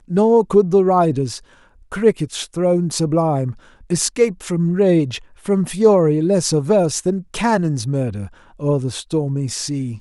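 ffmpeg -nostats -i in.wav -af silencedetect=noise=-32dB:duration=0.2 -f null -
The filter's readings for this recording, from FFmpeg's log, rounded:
silence_start: 1.39
silence_end: 1.92 | silence_duration: 0.53
silence_start: 3.53
silence_end: 3.90 | silence_duration: 0.38
silence_start: 5.18
silence_end: 5.45 | silence_duration: 0.27
silence_start: 8.28
silence_end: 8.60 | silence_duration: 0.32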